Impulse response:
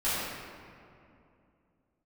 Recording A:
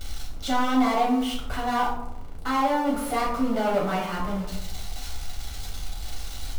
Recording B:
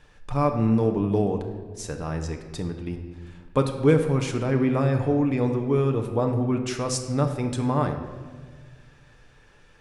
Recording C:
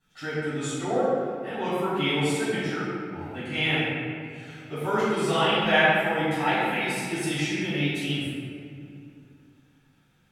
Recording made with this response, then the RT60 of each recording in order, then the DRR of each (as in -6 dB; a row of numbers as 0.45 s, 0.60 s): C; 0.85 s, 1.6 s, 2.6 s; -4.5 dB, 4.0 dB, -14.0 dB